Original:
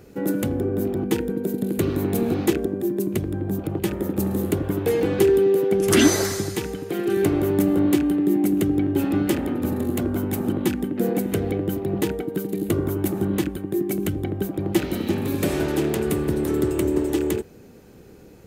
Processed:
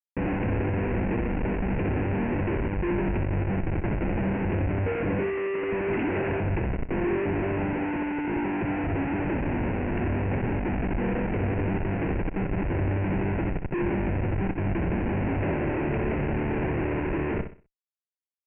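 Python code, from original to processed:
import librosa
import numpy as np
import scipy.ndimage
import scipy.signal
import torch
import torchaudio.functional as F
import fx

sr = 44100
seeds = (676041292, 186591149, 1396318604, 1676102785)

y = fx.schmitt(x, sr, flips_db=-25.5)
y = scipy.signal.sosfilt(scipy.signal.butter(16, 2700.0, 'lowpass', fs=sr, output='sos'), y)
y = fx.peak_eq(y, sr, hz=1200.0, db=-13.0, octaves=0.26)
y = fx.echo_feedback(y, sr, ms=63, feedback_pct=30, wet_db=-8.5)
y = y * librosa.db_to_amplitude(-3.5)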